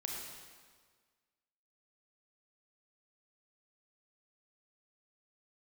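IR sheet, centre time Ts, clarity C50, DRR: 84 ms, 0.5 dB, -1.0 dB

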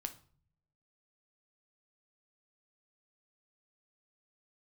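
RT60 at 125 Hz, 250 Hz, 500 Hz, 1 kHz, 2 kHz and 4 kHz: 1.1 s, 0.90 s, 0.50 s, 0.45 s, 0.40 s, 0.35 s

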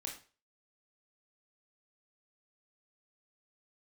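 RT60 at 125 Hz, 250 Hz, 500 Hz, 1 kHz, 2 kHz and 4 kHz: 0.40 s, 0.35 s, 0.40 s, 0.35 s, 0.35 s, 0.35 s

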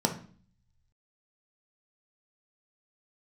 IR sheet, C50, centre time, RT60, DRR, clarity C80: 10.5 dB, 13 ms, 0.45 s, 3.0 dB, 16.0 dB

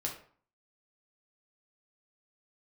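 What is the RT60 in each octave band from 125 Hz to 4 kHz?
0.55 s, 0.50 s, 0.45 s, 0.50 s, 0.40 s, 0.35 s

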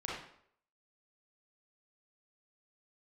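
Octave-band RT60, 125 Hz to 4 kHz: 0.55 s, 0.60 s, 0.70 s, 0.65 s, 0.55 s, 0.50 s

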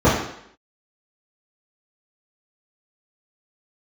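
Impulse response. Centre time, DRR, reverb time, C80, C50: 47 ms, -12.5 dB, 0.70 s, 6.5 dB, 3.5 dB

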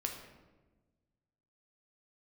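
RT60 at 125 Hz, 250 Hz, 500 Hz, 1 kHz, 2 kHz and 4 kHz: 2.0 s, 1.7 s, 1.4 s, 1.1 s, 0.90 s, 0.70 s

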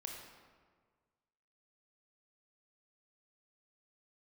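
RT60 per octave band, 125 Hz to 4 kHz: 1.9 s, 1.7 s, 1.7 s, 1.6 s, 1.3 s, 0.95 s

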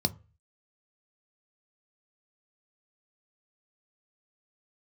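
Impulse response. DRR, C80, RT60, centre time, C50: 10.0 dB, 28.0 dB, 0.35 s, 3 ms, 22.5 dB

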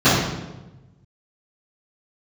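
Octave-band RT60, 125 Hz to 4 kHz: 1.7 s, 1.3 s, 1.2 s, 1.0 s, 0.85 s, 0.80 s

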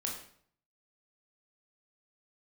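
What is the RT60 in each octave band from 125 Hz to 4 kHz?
0.80 s, 0.65 s, 0.60 s, 0.55 s, 0.55 s, 0.50 s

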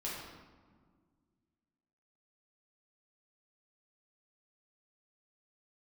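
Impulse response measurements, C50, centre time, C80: 0.0 dB, 81 ms, 2.5 dB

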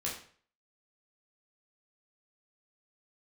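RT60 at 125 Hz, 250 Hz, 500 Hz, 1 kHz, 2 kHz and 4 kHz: 0.55 s, 0.45 s, 0.50 s, 0.45 s, 0.45 s, 0.40 s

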